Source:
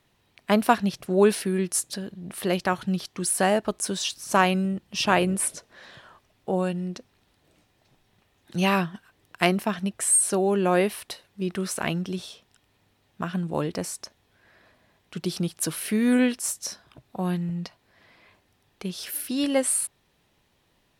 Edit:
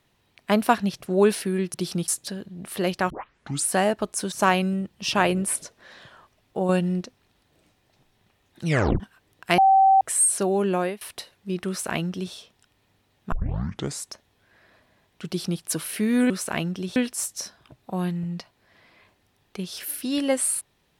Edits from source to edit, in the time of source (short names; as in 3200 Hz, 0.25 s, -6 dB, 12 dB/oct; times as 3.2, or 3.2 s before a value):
2.76 tape start 0.57 s
3.98–4.24 cut
6.61–6.93 gain +5.5 dB
8.57 tape stop 0.35 s
9.5–9.93 bleep 773 Hz -12.5 dBFS
10.62–10.93 fade out, to -22.5 dB
11.6–12.26 copy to 16.22
13.24 tape start 0.71 s
15.19–15.53 copy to 1.74